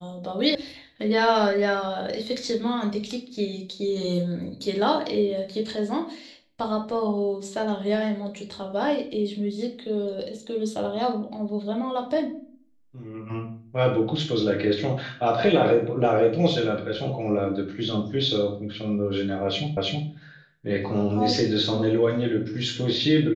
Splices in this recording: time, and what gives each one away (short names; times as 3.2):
0.55 sound cut off
19.77 repeat of the last 0.32 s